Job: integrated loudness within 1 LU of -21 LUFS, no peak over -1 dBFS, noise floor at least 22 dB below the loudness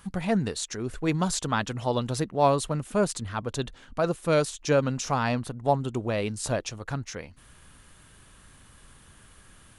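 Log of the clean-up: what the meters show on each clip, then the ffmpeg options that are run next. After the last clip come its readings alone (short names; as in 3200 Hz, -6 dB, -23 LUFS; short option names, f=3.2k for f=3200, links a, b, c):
loudness -27.5 LUFS; peak -9.0 dBFS; loudness target -21.0 LUFS
-> -af "volume=6.5dB"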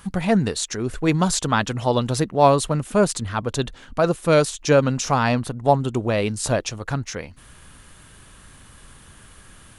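loudness -21.0 LUFS; peak -2.5 dBFS; noise floor -48 dBFS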